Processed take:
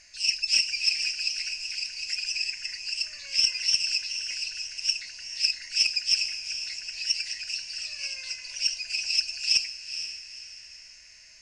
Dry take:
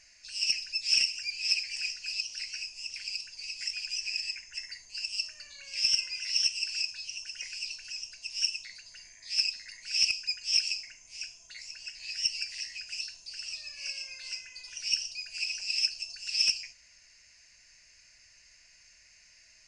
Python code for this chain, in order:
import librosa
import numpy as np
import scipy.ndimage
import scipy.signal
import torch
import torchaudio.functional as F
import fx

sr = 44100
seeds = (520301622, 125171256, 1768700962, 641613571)

y = fx.echo_diffused(x, sr, ms=808, feedback_pct=40, wet_db=-9.5)
y = fx.stretch_vocoder(y, sr, factor=0.58)
y = y * 10.0 ** (6.0 / 20.0)